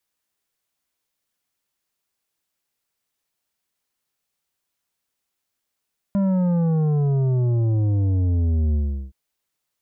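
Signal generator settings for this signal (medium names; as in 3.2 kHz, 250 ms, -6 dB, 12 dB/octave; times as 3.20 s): sub drop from 200 Hz, over 2.97 s, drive 9 dB, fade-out 0.38 s, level -18 dB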